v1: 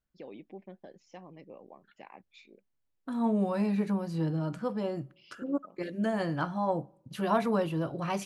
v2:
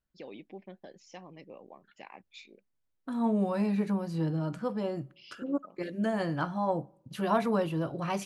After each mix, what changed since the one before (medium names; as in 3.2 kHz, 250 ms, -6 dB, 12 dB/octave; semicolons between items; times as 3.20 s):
first voice: add treble shelf 2.4 kHz +10 dB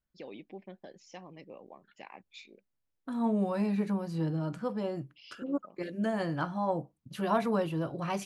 reverb: off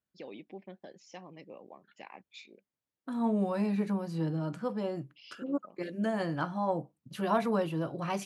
master: add high-pass 110 Hz